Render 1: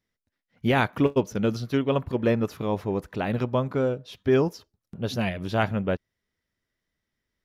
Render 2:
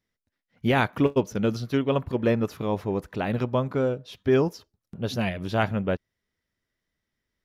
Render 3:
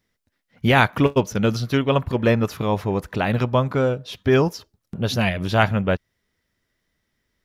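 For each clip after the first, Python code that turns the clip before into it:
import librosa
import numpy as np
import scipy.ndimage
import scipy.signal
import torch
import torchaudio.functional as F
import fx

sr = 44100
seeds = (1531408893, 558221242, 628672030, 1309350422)

y1 = x
y2 = fx.dynamic_eq(y1, sr, hz=330.0, q=0.72, threshold_db=-35.0, ratio=4.0, max_db=-6)
y2 = F.gain(torch.from_numpy(y2), 8.5).numpy()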